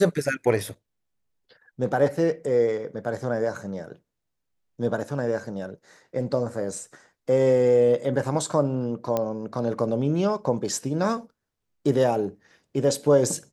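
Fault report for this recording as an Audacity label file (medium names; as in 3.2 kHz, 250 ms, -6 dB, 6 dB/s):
9.170000	9.170000	pop -12 dBFS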